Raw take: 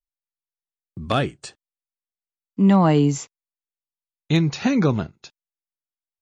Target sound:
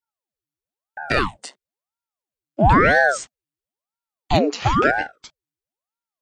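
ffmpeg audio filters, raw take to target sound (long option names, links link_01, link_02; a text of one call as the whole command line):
ffmpeg -i in.wav -af "afreqshift=220,aeval=exprs='val(0)*sin(2*PI*620*n/s+620*0.9/1*sin(2*PI*1*n/s))':channel_layout=same,volume=4dB" out.wav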